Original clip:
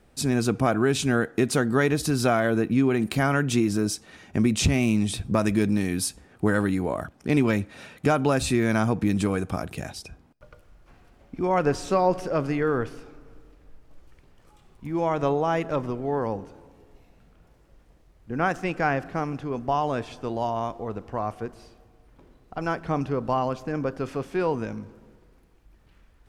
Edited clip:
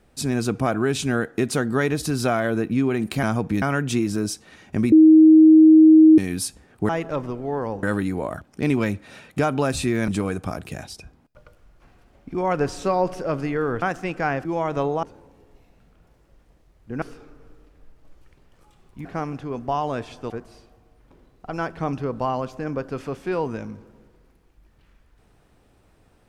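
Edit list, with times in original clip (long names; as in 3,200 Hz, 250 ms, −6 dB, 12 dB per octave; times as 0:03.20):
0:04.53–0:05.79: beep over 315 Hz −7 dBFS
0:08.75–0:09.14: move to 0:03.23
0:12.88–0:14.91: swap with 0:18.42–0:19.05
0:15.49–0:16.43: move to 0:06.50
0:20.30–0:21.38: remove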